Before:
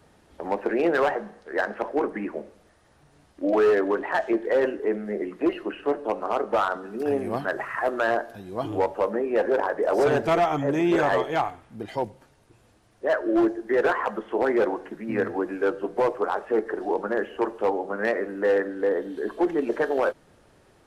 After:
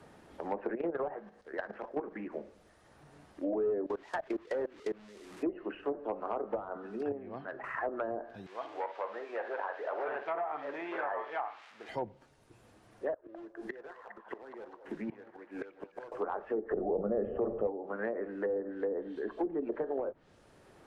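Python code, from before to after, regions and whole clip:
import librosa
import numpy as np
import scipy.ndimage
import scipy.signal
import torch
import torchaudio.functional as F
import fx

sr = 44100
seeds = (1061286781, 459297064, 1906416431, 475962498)

y = fx.chain(x, sr, fx.level_steps(step_db=11),
    fx.doppler_dist(depth_ms=0.11), at=(0.75, 2.32))
y = fx.chain(y, sr, fx.delta_mod(bps=64000, step_db=-27.5),
    fx.high_shelf(hz=2500.0, db=7.0),
    fx.level_steps(step_db=23), at=(3.86, 5.43))
y = fx.chain(y, sr, fx.air_absorb(metres=240.0),
    fx.comb_fb(f0_hz=130.0, decay_s=2.0, harmonics='all', damping=0.0, mix_pct=60), at=(7.12, 7.64))
y = fx.chain(y, sr, fx.crossing_spikes(level_db=-24.5),
    fx.bandpass_edges(low_hz=760.0, high_hz=2300.0),
    fx.room_flutter(wall_m=9.3, rt60_s=0.33), at=(8.46, 11.89))
y = fx.chain(y, sr, fx.gate_flip(shuts_db=-22.0, range_db=-26),
    fx.leveller(passes=1),
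    fx.echo_stepped(ms=205, hz=800.0, octaves=0.7, feedback_pct=70, wet_db=-4), at=(13.14, 16.12))
y = fx.chain(y, sr, fx.low_shelf(hz=460.0, db=9.0),
    fx.comb(ms=1.6, depth=0.61),
    fx.env_flatten(amount_pct=50), at=(16.71, 17.67))
y = fx.env_lowpass_down(y, sr, base_hz=510.0, full_db=-18.5)
y = fx.band_squash(y, sr, depth_pct=40)
y = F.gain(torch.from_numpy(y), -9.0).numpy()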